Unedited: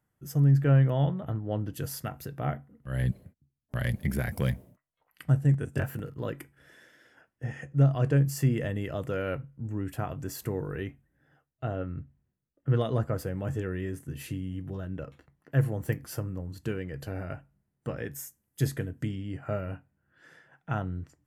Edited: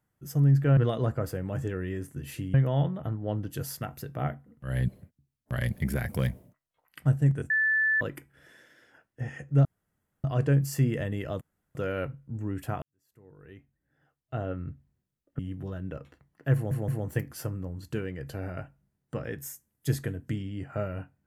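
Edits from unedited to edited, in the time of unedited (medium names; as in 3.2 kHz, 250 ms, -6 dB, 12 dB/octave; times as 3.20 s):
5.73–6.24 s: bleep 1.75 kHz -21.5 dBFS
7.88 s: insert room tone 0.59 s
9.05 s: insert room tone 0.34 s
10.12–11.71 s: fade in quadratic
12.69–14.46 s: move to 0.77 s
15.61 s: stutter 0.17 s, 3 plays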